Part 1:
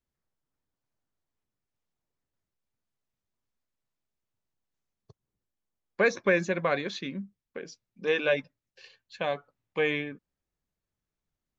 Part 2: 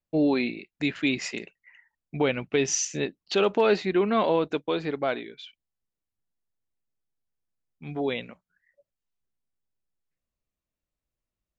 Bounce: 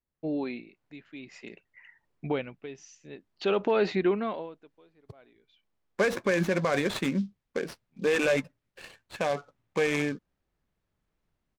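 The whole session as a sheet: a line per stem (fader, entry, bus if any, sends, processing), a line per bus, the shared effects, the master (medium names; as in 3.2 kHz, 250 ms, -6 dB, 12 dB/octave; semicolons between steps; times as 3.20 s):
-3.0 dB, 0.00 s, no send, delay time shaken by noise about 4.2 kHz, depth 0.033 ms
-8.0 dB, 0.10 s, no send, logarithmic tremolo 0.54 Hz, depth 23 dB; auto duck -21 dB, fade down 0.70 s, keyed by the first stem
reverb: none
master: treble shelf 4.9 kHz -11.5 dB; level rider gain up to 11.5 dB; peak limiter -16 dBFS, peak gain reduction 11.5 dB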